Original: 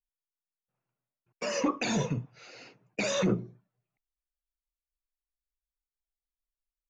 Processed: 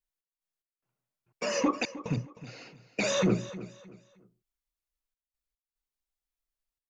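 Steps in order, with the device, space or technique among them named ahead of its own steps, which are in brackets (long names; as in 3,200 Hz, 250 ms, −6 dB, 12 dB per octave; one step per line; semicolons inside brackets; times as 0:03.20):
trance gate with a delay (gate pattern "x.x.xxxx" 73 BPM −60 dB; repeating echo 310 ms, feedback 30%, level −15.5 dB)
level +1.5 dB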